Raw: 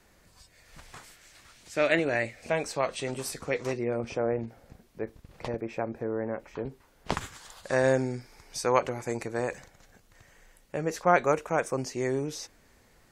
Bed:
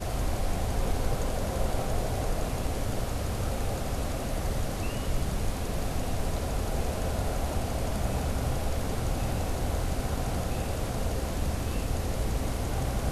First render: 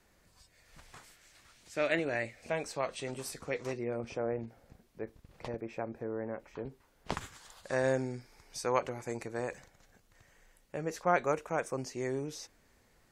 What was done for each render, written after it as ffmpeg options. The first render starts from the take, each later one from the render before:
-af "volume=0.501"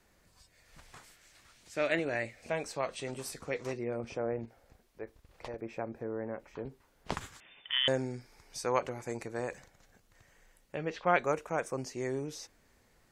-filter_complex "[0:a]asettb=1/sr,asplit=3[s0][s1][s2];[s0]atrim=end=4.454[s3];[s1]atrim=start=4.45:end=5.59,asetpts=PTS-STARTPTS,afade=t=in:d=0.004:c=qsin,afade=t=out:st=1.136:d=0.004:c=qsin,equalizer=f=170:w=0.84:g=-9.5[s4];[s2]atrim=start=5.586[s5];[s3][s4]acrossfade=d=0.004:c1=hsin:c2=qsin[s6];[s6][s5]acrossfade=d=0.004:c1=qsin:c2=hsin,asettb=1/sr,asplit=3[s7][s8][s9];[s7]atrim=end=7.404[s10];[s8]atrim=start=7.4:end=7.88,asetpts=PTS-STARTPTS,afade=t=in:d=0.004:c=qsin,afade=t=out:st=0.476:d=0.004:c=qsin,lowpass=f=3100:t=q:w=0.5098,lowpass=f=3100:t=q:w=0.6013,lowpass=f=3100:t=q:w=0.9,lowpass=f=3100:t=q:w=2.563,afreqshift=-3600[s11];[s9]atrim=start=7.876[s12];[s10][s11]acrossfade=d=0.004:c1=hsin:c2=qsin[s13];[s13][s12]acrossfade=d=0.004:c1=qsin:c2=hsin,asettb=1/sr,asplit=3[s14][s15][s16];[s14]atrim=end=10.754[s17];[s15]atrim=start=10.75:end=11.19,asetpts=PTS-STARTPTS,afade=t=in:d=0.004:c=qsin,afade=t=out:st=0.436:d=0.004:c=qsin,lowpass=f=3200:t=q:w=3.2[s18];[s16]atrim=start=11.186[s19];[s17][s18]acrossfade=d=0.004:c1=hsin:c2=qsin[s20];[s20][s19]acrossfade=d=0.004:c1=qsin:c2=hsin"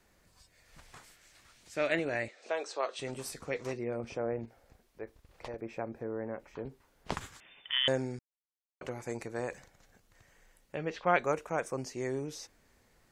-filter_complex "[0:a]asettb=1/sr,asplit=3[s0][s1][s2];[s0]atrim=end=2.284[s3];[s1]atrim=start=2.28:end=2.99,asetpts=PTS-STARTPTS,afade=t=in:d=0.004:c=qsin,afade=t=out:st=0.706:d=0.004:c=qsin,highpass=f=340:w=0.5412,highpass=f=340:w=1.3066,equalizer=f=390:t=q:w=4:g=4,equalizer=f=1300:t=q:w=4:g=4,equalizer=f=2200:t=q:w=4:g=-5,equalizer=f=3700:t=q:w=4:g=5,lowpass=f=7600:w=0.5412,lowpass=f=7600:w=1.3066[s4];[s2]atrim=start=2.986[s5];[s3][s4]acrossfade=d=0.004:c1=hsin:c2=qsin[s6];[s6][s5]acrossfade=d=0.004:c1=qsin:c2=hsin,asplit=3[s7][s8][s9];[s7]atrim=end=8.19,asetpts=PTS-STARTPTS,afade=t=out:st=8.186:d=0.004:c=hsin[s10];[s8]atrim=start=8.19:end=8.81,asetpts=PTS-STARTPTS,volume=0[s11];[s9]atrim=start=8.81,asetpts=PTS-STARTPTS,afade=t=in:d=0.004:c=hsin[s12];[s10][s11][s12]concat=n=3:v=0:a=1"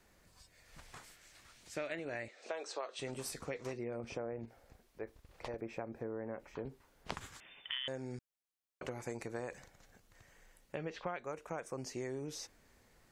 -af "acompressor=threshold=0.0141:ratio=10"

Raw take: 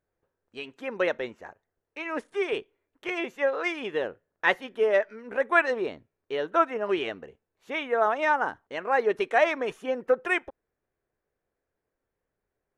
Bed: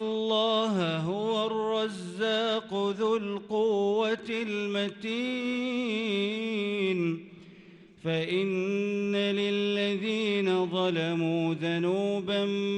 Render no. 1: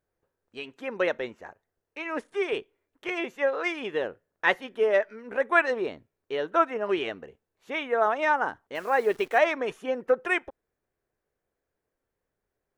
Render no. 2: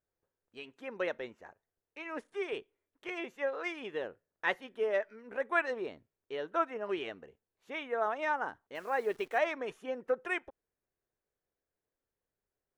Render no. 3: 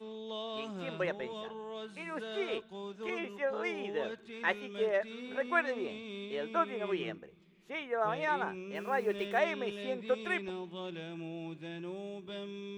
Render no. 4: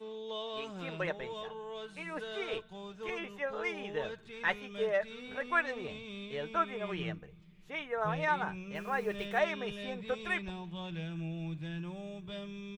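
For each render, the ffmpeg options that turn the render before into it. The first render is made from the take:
-filter_complex "[0:a]asettb=1/sr,asplit=3[s0][s1][s2];[s0]atrim=end=8.754[s3];[s1]atrim=start=8.75:end=9.39,asetpts=PTS-STARTPTS,afade=t=in:d=0.004:c=qsin,afade=t=out:st=0.636:d=0.004:c=qsin,acrusher=bits=9:dc=4:mix=0:aa=0.000001[s4];[s2]atrim=start=9.386[s5];[s3][s4]acrossfade=d=0.004:c1=hsin:c2=qsin[s6];[s6][s5]acrossfade=d=0.004:c1=qsin:c2=hsin"
-af "volume=0.376"
-filter_complex "[1:a]volume=0.188[s0];[0:a][s0]amix=inputs=2:normalize=0"
-af "aecho=1:1:6.6:0.4,asubboost=boost=11:cutoff=94"

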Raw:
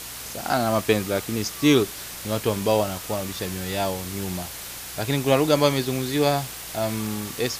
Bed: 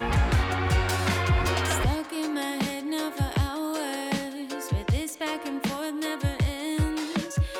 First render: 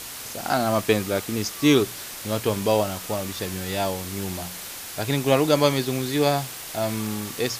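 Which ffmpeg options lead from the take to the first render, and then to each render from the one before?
-af "bandreject=f=60:t=h:w=4,bandreject=f=120:t=h:w=4,bandreject=f=180:t=h:w=4"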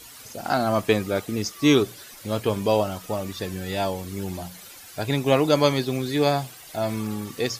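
-af "afftdn=nr=12:nf=-37"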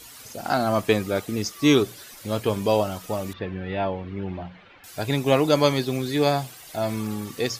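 -filter_complex "[0:a]asettb=1/sr,asplit=3[s0][s1][s2];[s0]atrim=end=3.334[s3];[s1]atrim=start=3.33:end=4.84,asetpts=PTS-STARTPTS,afade=t=in:d=0.004:c=qsin,afade=t=out:st=1.506:d=0.004:c=qsin,lowpass=f=2800:w=0.5412,lowpass=f=2800:w=1.3066[s4];[s2]atrim=start=4.836[s5];[s3][s4]acrossfade=d=0.004:c1=hsin:c2=qsin[s6];[s6][s5]acrossfade=d=0.004:c1=qsin:c2=hsin"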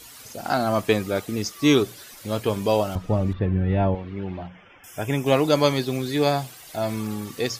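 -filter_complex "[0:a]asettb=1/sr,asplit=3[s0][s1][s2];[s0]atrim=end=2.954[s3];[s1]atrim=start=2.95:end=3.95,asetpts=PTS-STARTPTS,afade=t=in:d=0.004:c=qsin,afade=t=out:st=0.996:d=0.004:c=qsin,aemphasis=mode=reproduction:type=riaa[s4];[s2]atrim=start=3.946[s5];[s3][s4]acrossfade=d=0.004:c1=hsin:c2=qsin[s6];[s6][s5]acrossfade=d=0.004:c1=qsin:c2=hsin,asettb=1/sr,asplit=3[s7][s8][s9];[s7]atrim=end=4.474[s10];[s8]atrim=start=4.47:end=5.26,asetpts=PTS-STARTPTS,afade=t=in:d=0.004:c=qsin,afade=t=out:st=0.786:d=0.004:c=qsin,asuperstop=centerf=4200:order=12:qfactor=2.7[s11];[s9]atrim=start=5.256[s12];[s10][s11]acrossfade=d=0.004:c1=hsin:c2=qsin[s13];[s13][s12]acrossfade=d=0.004:c1=qsin:c2=hsin"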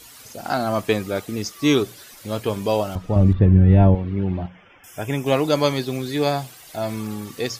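-filter_complex "[0:a]asettb=1/sr,asplit=3[s0][s1][s2];[s0]atrim=end=3.164[s3];[s1]atrim=start=3.16:end=4.46,asetpts=PTS-STARTPTS,afade=t=in:d=0.004:c=qsin,afade=t=out:st=1.296:d=0.004:c=qsin,lowshelf=f=350:g=11[s4];[s2]atrim=start=4.456[s5];[s3][s4]acrossfade=d=0.004:c1=hsin:c2=qsin[s6];[s6][s5]acrossfade=d=0.004:c1=qsin:c2=hsin"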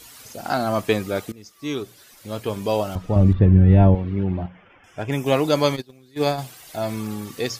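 -filter_complex "[0:a]asettb=1/sr,asplit=3[s0][s1][s2];[s0]atrim=end=4.234[s3];[s1]atrim=start=4.23:end=5.12,asetpts=PTS-STARTPTS,afade=t=in:d=0.004:c=qsin,afade=t=out:st=0.886:d=0.004:c=qsin,adynamicsmooth=sensitivity=4.5:basefreq=3500[s4];[s2]atrim=start=5.116[s5];[s3][s4]acrossfade=d=0.004:c1=hsin:c2=qsin[s6];[s6][s5]acrossfade=d=0.004:c1=qsin:c2=hsin,asplit=3[s7][s8][s9];[s7]afade=t=out:st=5.75:d=0.02[s10];[s8]agate=range=0.0631:threshold=0.0794:ratio=16:release=100:detection=peak,afade=t=in:st=5.75:d=0.02,afade=t=out:st=6.37:d=0.02[s11];[s9]afade=t=in:st=6.37:d=0.02[s12];[s10][s11][s12]amix=inputs=3:normalize=0,asplit=2[s13][s14];[s13]atrim=end=1.32,asetpts=PTS-STARTPTS,afade=t=out:st=1.316:d=0.004:c=hsin:silence=0.0944061[s15];[s14]atrim=start=1.32,asetpts=PTS-STARTPTS,afade=t=in:d=1.65:silence=0.0944061[s16];[s15][s16]concat=n=2:v=0:a=1"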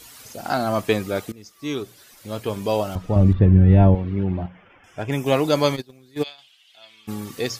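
-filter_complex "[0:a]asplit=3[s0][s1][s2];[s0]afade=t=out:st=6.22:d=0.02[s3];[s1]bandpass=f=3100:t=q:w=5,afade=t=in:st=6.22:d=0.02,afade=t=out:st=7.07:d=0.02[s4];[s2]afade=t=in:st=7.07:d=0.02[s5];[s3][s4][s5]amix=inputs=3:normalize=0"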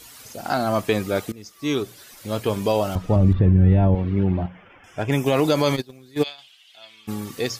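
-af "dynaudnorm=f=590:g=5:m=3.76,alimiter=limit=0.355:level=0:latency=1:release=54"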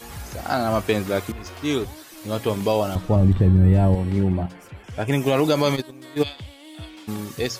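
-filter_complex "[1:a]volume=0.211[s0];[0:a][s0]amix=inputs=2:normalize=0"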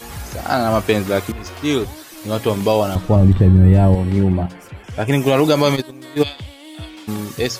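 -af "volume=1.78"

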